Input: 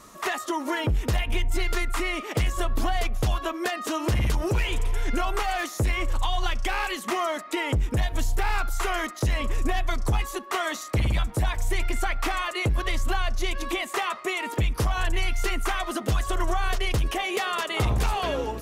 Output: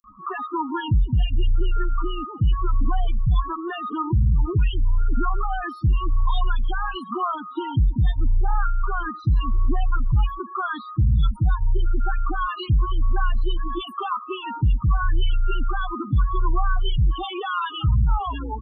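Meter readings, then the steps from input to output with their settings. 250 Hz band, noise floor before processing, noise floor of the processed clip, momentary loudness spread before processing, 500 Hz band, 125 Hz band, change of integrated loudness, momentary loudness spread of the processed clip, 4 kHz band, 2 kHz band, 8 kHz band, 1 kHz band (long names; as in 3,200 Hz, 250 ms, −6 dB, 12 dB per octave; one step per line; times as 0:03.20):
+1.0 dB, −39 dBFS, −38 dBFS, 3 LU, −5.5 dB, +5.5 dB, +2.5 dB, 7 LU, −4.0 dB, −5.0 dB, below −35 dB, +1.5 dB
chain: phaser with its sweep stopped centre 2,100 Hz, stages 6
spectral peaks only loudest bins 8
multiband delay without the direct sound highs, lows 40 ms, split 5,000 Hz
level +6 dB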